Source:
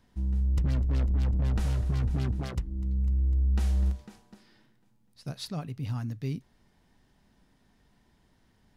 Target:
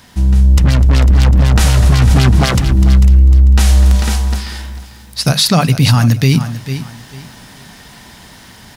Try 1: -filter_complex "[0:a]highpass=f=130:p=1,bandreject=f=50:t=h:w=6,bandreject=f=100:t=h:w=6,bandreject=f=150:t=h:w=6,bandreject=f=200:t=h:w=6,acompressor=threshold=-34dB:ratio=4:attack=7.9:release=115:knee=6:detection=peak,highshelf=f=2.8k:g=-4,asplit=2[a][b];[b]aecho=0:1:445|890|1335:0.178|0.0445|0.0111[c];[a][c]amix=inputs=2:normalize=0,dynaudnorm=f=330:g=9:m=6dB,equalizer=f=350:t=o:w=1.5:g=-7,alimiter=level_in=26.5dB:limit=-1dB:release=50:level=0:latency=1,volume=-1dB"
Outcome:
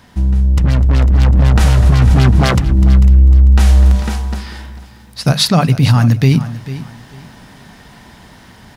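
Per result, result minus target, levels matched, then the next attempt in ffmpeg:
compressor: peak gain reduction +6.5 dB; 4000 Hz band -3.0 dB
-filter_complex "[0:a]highpass=f=130:p=1,highshelf=f=2.8k:g=-4,bandreject=f=50:t=h:w=6,bandreject=f=100:t=h:w=6,bandreject=f=150:t=h:w=6,bandreject=f=200:t=h:w=6,asplit=2[a][b];[b]aecho=0:1:445|890|1335:0.178|0.0445|0.0111[c];[a][c]amix=inputs=2:normalize=0,dynaudnorm=f=330:g=9:m=6dB,equalizer=f=350:t=o:w=1.5:g=-7,alimiter=level_in=26.5dB:limit=-1dB:release=50:level=0:latency=1,volume=-1dB"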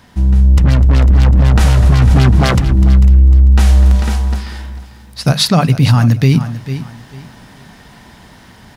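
4000 Hz band -3.5 dB
-filter_complex "[0:a]highpass=f=130:p=1,highshelf=f=2.8k:g=5.5,bandreject=f=50:t=h:w=6,bandreject=f=100:t=h:w=6,bandreject=f=150:t=h:w=6,bandreject=f=200:t=h:w=6,asplit=2[a][b];[b]aecho=0:1:445|890|1335:0.178|0.0445|0.0111[c];[a][c]amix=inputs=2:normalize=0,dynaudnorm=f=330:g=9:m=6dB,equalizer=f=350:t=o:w=1.5:g=-7,alimiter=level_in=26.5dB:limit=-1dB:release=50:level=0:latency=1,volume=-1dB"

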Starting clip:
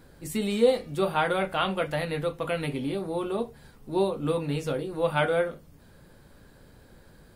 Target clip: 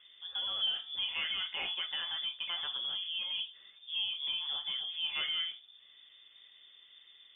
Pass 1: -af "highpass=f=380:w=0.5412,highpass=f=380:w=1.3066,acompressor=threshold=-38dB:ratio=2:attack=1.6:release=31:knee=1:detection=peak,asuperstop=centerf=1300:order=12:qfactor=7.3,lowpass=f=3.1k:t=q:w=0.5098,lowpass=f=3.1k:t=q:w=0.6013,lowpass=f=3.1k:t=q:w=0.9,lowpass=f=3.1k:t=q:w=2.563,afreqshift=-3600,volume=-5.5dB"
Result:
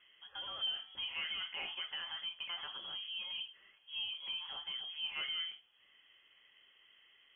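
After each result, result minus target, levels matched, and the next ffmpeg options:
compressor: peak gain reduction +3.5 dB; 500 Hz band +2.5 dB
-af "highpass=f=380:w=0.5412,highpass=f=380:w=1.3066,acompressor=threshold=-29.5dB:ratio=2:attack=1.6:release=31:knee=1:detection=peak,asuperstop=centerf=1300:order=12:qfactor=7.3,lowpass=f=3.1k:t=q:w=0.5098,lowpass=f=3.1k:t=q:w=0.6013,lowpass=f=3.1k:t=q:w=0.9,lowpass=f=3.1k:t=q:w=2.563,afreqshift=-3600,volume=-5.5dB"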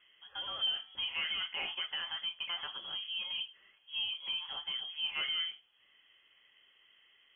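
500 Hz band +2.5 dB
-af "acompressor=threshold=-29.5dB:ratio=2:attack=1.6:release=31:knee=1:detection=peak,asuperstop=centerf=1300:order=12:qfactor=7.3,lowpass=f=3.1k:t=q:w=0.5098,lowpass=f=3.1k:t=q:w=0.6013,lowpass=f=3.1k:t=q:w=0.9,lowpass=f=3.1k:t=q:w=2.563,afreqshift=-3600,volume=-5.5dB"

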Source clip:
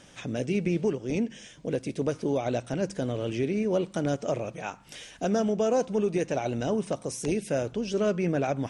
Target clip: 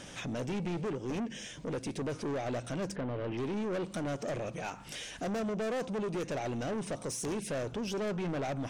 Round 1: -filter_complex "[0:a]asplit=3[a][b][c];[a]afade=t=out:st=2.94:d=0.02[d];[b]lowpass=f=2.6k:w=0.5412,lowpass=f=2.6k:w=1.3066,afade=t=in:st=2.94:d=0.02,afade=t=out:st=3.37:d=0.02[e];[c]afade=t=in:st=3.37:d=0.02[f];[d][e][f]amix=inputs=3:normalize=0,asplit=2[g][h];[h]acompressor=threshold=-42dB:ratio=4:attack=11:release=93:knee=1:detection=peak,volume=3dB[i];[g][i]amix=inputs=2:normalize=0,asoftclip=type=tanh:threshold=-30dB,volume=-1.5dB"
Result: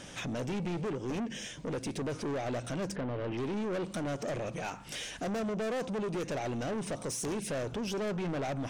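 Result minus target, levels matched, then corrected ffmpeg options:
compressor: peak gain reduction -7 dB
-filter_complex "[0:a]asplit=3[a][b][c];[a]afade=t=out:st=2.94:d=0.02[d];[b]lowpass=f=2.6k:w=0.5412,lowpass=f=2.6k:w=1.3066,afade=t=in:st=2.94:d=0.02,afade=t=out:st=3.37:d=0.02[e];[c]afade=t=in:st=3.37:d=0.02[f];[d][e][f]amix=inputs=3:normalize=0,asplit=2[g][h];[h]acompressor=threshold=-51.5dB:ratio=4:attack=11:release=93:knee=1:detection=peak,volume=3dB[i];[g][i]amix=inputs=2:normalize=0,asoftclip=type=tanh:threshold=-30dB,volume=-1.5dB"

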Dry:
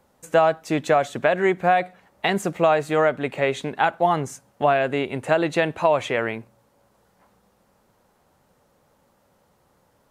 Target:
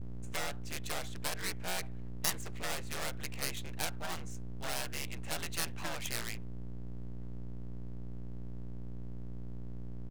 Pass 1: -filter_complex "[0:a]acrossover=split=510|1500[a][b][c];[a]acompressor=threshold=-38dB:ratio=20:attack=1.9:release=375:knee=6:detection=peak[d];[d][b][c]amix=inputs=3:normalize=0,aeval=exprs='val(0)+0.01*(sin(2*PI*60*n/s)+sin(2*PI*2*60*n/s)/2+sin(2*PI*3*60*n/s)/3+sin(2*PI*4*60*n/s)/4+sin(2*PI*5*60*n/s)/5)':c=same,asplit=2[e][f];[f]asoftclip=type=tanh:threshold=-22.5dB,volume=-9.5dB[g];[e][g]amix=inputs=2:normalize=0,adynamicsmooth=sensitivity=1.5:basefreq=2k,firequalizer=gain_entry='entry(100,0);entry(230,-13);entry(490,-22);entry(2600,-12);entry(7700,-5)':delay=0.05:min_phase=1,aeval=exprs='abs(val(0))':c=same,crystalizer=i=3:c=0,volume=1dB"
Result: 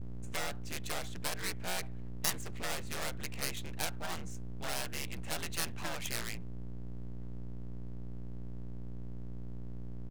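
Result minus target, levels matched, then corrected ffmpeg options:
compressor: peak gain reduction -6.5 dB
-filter_complex "[0:a]acrossover=split=510|1500[a][b][c];[a]acompressor=threshold=-45dB:ratio=20:attack=1.9:release=375:knee=6:detection=peak[d];[d][b][c]amix=inputs=3:normalize=0,aeval=exprs='val(0)+0.01*(sin(2*PI*60*n/s)+sin(2*PI*2*60*n/s)/2+sin(2*PI*3*60*n/s)/3+sin(2*PI*4*60*n/s)/4+sin(2*PI*5*60*n/s)/5)':c=same,asplit=2[e][f];[f]asoftclip=type=tanh:threshold=-22.5dB,volume=-9.5dB[g];[e][g]amix=inputs=2:normalize=0,adynamicsmooth=sensitivity=1.5:basefreq=2k,firequalizer=gain_entry='entry(100,0);entry(230,-13);entry(490,-22);entry(2600,-12);entry(7700,-5)':delay=0.05:min_phase=1,aeval=exprs='abs(val(0))':c=same,crystalizer=i=3:c=0,volume=1dB"

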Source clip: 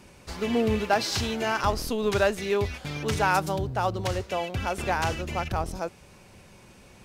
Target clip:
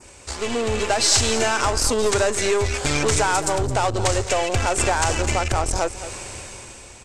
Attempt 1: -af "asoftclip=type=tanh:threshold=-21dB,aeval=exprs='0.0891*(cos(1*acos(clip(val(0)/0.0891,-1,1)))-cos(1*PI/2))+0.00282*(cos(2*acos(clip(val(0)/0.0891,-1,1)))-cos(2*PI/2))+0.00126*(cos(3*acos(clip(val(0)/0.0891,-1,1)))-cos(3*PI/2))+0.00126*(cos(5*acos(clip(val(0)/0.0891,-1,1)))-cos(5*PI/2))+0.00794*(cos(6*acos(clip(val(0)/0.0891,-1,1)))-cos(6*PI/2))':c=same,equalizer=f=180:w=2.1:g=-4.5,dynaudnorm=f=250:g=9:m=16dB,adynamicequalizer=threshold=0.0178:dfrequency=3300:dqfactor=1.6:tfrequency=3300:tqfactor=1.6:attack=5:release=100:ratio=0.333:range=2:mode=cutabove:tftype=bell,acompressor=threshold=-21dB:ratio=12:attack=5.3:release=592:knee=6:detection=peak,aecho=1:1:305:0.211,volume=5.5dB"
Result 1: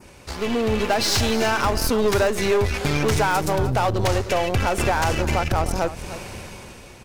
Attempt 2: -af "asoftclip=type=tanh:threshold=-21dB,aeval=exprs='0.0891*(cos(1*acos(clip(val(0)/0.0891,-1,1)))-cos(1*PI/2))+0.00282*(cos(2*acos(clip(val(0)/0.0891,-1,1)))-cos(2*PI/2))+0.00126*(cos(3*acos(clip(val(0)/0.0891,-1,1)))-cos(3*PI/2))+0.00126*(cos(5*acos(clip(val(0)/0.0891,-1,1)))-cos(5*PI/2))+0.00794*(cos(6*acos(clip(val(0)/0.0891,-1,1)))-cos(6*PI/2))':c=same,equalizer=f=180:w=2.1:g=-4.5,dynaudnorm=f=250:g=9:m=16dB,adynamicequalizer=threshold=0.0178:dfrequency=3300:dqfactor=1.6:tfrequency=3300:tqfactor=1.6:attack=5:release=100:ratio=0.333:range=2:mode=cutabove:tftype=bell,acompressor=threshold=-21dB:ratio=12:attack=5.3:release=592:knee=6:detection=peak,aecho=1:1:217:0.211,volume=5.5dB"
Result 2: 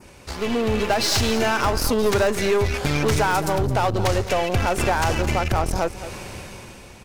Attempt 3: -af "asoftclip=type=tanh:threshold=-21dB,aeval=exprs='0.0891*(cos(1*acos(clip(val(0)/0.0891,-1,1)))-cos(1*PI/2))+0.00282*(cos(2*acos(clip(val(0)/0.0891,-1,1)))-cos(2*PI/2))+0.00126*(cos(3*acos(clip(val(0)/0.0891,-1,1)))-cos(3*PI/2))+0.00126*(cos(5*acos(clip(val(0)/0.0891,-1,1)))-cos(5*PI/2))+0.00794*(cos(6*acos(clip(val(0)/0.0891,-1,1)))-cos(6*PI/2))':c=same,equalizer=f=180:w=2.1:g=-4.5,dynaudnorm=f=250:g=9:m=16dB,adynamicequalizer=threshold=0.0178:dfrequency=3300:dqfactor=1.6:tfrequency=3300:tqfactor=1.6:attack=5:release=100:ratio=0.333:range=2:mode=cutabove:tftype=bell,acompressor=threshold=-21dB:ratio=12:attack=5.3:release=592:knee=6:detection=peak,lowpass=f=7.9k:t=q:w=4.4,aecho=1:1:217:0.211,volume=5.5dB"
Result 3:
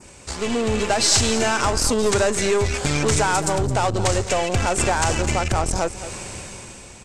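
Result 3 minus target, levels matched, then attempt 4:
250 Hz band +3.5 dB
-af "asoftclip=type=tanh:threshold=-21dB,aeval=exprs='0.0891*(cos(1*acos(clip(val(0)/0.0891,-1,1)))-cos(1*PI/2))+0.00282*(cos(2*acos(clip(val(0)/0.0891,-1,1)))-cos(2*PI/2))+0.00126*(cos(3*acos(clip(val(0)/0.0891,-1,1)))-cos(3*PI/2))+0.00126*(cos(5*acos(clip(val(0)/0.0891,-1,1)))-cos(5*PI/2))+0.00794*(cos(6*acos(clip(val(0)/0.0891,-1,1)))-cos(6*PI/2))':c=same,equalizer=f=180:w=2.1:g=-15,dynaudnorm=f=250:g=9:m=16dB,adynamicequalizer=threshold=0.0178:dfrequency=3300:dqfactor=1.6:tfrequency=3300:tqfactor=1.6:attack=5:release=100:ratio=0.333:range=2:mode=cutabove:tftype=bell,acompressor=threshold=-21dB:ratio=12:attack=5.3:release=592:knee=6:detection=peak,lowpass=f=7.9k:t=q:w=4.4,aecho=1:1:217:0.211,volume=5.5dB"

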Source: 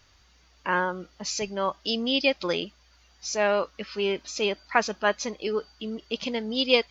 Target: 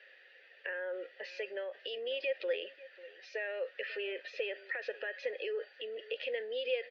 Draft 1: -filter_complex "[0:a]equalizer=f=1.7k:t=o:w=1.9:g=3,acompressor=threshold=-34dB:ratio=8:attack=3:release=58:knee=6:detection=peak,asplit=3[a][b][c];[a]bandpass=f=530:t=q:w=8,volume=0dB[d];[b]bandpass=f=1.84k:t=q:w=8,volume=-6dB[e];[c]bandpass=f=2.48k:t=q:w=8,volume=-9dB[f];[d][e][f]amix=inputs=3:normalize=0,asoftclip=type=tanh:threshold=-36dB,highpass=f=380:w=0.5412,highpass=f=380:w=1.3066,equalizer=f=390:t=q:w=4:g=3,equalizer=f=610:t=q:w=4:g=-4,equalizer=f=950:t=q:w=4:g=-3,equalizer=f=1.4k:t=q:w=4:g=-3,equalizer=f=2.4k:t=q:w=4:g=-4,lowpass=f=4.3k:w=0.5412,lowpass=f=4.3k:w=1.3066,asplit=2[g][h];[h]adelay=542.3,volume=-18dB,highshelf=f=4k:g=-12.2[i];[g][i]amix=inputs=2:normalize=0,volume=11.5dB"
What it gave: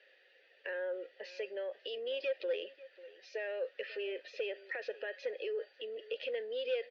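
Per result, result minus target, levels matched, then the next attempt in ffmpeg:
soft clip: distortion +21 dB; 2000 Hz band -3.0 dB
-filter_complex "[0:a]equalizer=f=1.7k:t=o:w=1.9:g=3,acompressor=threshold=-34dB:ratio=8:attack=3:release=58:knee=6:detection=peak,asplit=3[a][b][c];[a]bandpass=f=530:t=q:w=8,volume=0dB[d];[b]bandpass=f=1.84k:t=q:w=8,volume=-6dB[e];[c]bandpass=f=2.48k:t=q:w=8,volume=-9dB[f];[d][e][f]amix=inputs=3:normalize=0,asoftclip=type=tanh:threshold=-24.5dB,highpass=f=380:w=0.5412,highpass=f=380:w=1.3066,equalizer=f=390:t=q:w=4:g=3,equalizer=f=610:t=q:w=4:g=-4,equalizer=f=950:t=q:w=4:g=-3,equalizer=f=1.4k:t=q:w=4:g=-3,equalizer=f=2.4k:t=q:w=4:g=-4,lowpass=f=4.3k:w=0.5412,lowpass=f=4.3k:w=1.3066,asplit=2[g][h];[h]adelay=542.3,volume=-18dB,highshelf=f=4k:g=-12.2[i];[g][i]amix=inputs=2:normalize=0,volume=11.5dB"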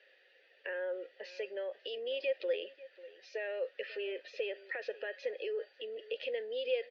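2000 Hz band -3.0 dB
-filter_complex "[0:a]equalizer=f=1.7k:t=o:w=1.9:g=11,acompressor=threshold=-34dB:ratio=8:attack=3:release=58:knee=6:detection=peak,asplit=3[a][b][c];[a]bandpass=f=530:t=q:w=8,volume=0dB[d];[b]bandpass=f=1.84k:t=q:w=8,volume=-6dB[e];[c]bandpass=f=2.48k:t=q:w=8,volume=-9dB[f];[d][e][f]amix=inputs=3:normalize=0,asoftclip=type=tanh:threshold=-24.5dB,highpass=f=380:w=0.5412,highpass=f=380:w=1.3066,equalizer=f=390:t=q:w=4:g=3,equalizer=f=610:t=q:w=4:g=-4,equalizer=f=950:t=q:w=4:g=-3,equalizer=f=1.4k:t=q:w=4:g=-3,equalizer=f=2.4k:t=q:w=4:g=-4,lowpass=f=4.3k:w=0.5412,lowpass=f=4.3k:w=1.3066,asplit=2[g][h];[h]adelay=542.3,volume=-18dB,highshelf=f=4k:g=-12.2[i];[g][i]amix=inputs=2:normalize=0,volume=11.5dB"

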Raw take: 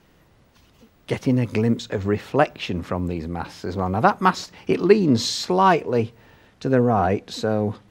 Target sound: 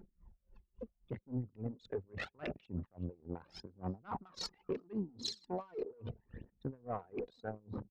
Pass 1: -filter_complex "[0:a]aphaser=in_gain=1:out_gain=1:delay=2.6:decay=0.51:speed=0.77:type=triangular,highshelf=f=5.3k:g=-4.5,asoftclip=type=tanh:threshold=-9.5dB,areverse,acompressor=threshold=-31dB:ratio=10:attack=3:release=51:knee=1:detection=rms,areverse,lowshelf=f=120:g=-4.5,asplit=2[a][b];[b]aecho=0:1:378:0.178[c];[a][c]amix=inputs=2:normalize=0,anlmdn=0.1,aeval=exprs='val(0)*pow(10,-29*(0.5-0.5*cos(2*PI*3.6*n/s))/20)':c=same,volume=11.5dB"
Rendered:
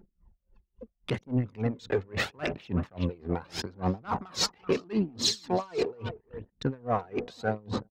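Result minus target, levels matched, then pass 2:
compressor: peak gain reduction -10.5 dB
-filter_complex "[0:a]aphaser=in_gain=1:out_gain=1:delay=2.6:decay=0.51:speed=0.77:type=triangular,highshelf=f=5.3k:g=-4.5,asoftclip=type=tanh:threshold=-9.5dB,areverse,acompressor=threshold=-42.5dB:ratio=10:attack=3:release=51:knee=1:detection=rms,areverse,lowshelf=f=120:g=-4.5,asplit=2[a][b];[b]aecho=0:1:378:0.178[c];[a][c]amix=inputs=2:normalize=0,anlmdn=0.1,aeval=exprs='val(0)*pow(10,-29*(0.5-0.5*cos(2*PI*3.6*n/s))/20)':c=same,volume=11.5dB"

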